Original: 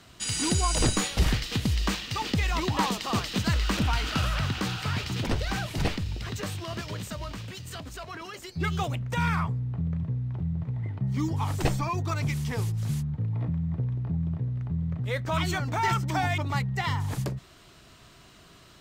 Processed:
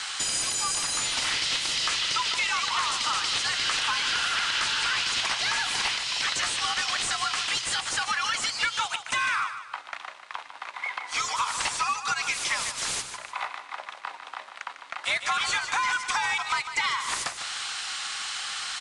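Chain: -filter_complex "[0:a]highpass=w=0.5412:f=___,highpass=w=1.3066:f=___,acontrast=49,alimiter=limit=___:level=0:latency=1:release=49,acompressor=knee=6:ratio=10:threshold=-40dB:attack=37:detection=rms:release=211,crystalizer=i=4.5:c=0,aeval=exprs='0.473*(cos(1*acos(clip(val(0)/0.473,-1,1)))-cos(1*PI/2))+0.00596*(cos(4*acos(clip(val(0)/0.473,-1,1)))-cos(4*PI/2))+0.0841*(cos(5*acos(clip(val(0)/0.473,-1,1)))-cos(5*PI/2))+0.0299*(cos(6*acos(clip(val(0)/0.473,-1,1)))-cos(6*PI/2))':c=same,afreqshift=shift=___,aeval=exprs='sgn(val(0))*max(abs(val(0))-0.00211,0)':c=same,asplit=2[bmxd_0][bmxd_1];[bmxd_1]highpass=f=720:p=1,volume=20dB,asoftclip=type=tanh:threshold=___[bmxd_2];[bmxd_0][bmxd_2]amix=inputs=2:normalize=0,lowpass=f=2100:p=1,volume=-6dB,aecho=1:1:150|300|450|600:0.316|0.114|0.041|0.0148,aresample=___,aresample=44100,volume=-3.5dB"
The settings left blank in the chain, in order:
750, 750, -14dB, 120, -8dB, 22050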